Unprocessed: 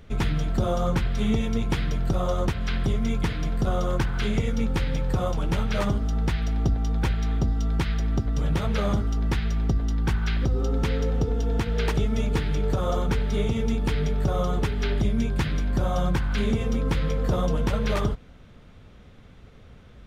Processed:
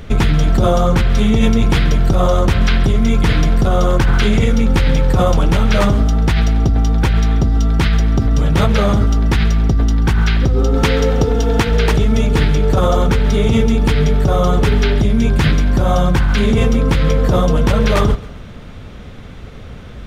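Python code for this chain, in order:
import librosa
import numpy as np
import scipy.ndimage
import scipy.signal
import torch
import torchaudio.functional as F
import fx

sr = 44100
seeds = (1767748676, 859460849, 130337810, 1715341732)

p1 = fx.low_shelf(x, sr, hz=340.0, db=-6.5, at=(10.75, 11.72))
p2 = fx.over_compress(p1, sr, threshold_db=-26.0, ratio=-0.5)
p3 = p1 + F.gain(torch.from_numpy(p2), 1.0).numpy()
p4 = fx.echo_feedback(p3, sr, ms=135, feedback_pct=41, wet_db=-19.0)
y = F.gain(torch.from_numpy(p4), 7.0).numpy()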